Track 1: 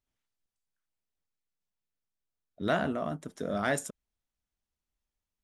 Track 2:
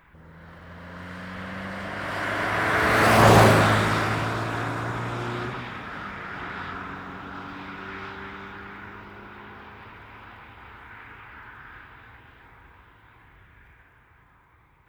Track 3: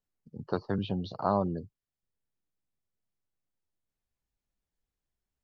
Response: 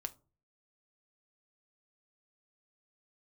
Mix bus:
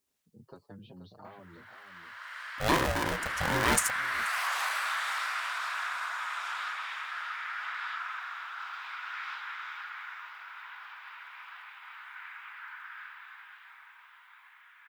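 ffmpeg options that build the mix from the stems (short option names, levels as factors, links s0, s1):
-filter_complex "[0:a]highpass=46,highshelf=f=4500:g=11.5,aeval=exprs='val(0)*sgn(sin(2*PI*330*n/s))':c=same,volume=1.19,asplit=2[s0][s1];[s1]volume=0.0794[s2];[1:a]highpass=f=1100:w=0.5412,highpass=f=1100:w=1.3066,acompressor=threshold=0.0282:ratio=4,adelay=1250,volume=1,asplit=2[s3][s4];[s4]volume=0.355[s5];[2:a]highpass=50,acompressor=threshold=0.0224:ratio=6,asplit=2[s6][s7];[s7]adelay=6.1,afreqshift=2.5[s8];[s6][s8]amix=inputs=2:normalize=1,volume=0.335,asplit=2[s9][s10];[s10]volume=0.335[s11];[s2][s5][s11]amix=inputs=3:normalize=0,aecho=0:1:480:1[s12];[s0][s3][s9][s12]amix=inputs=4:normalize=0"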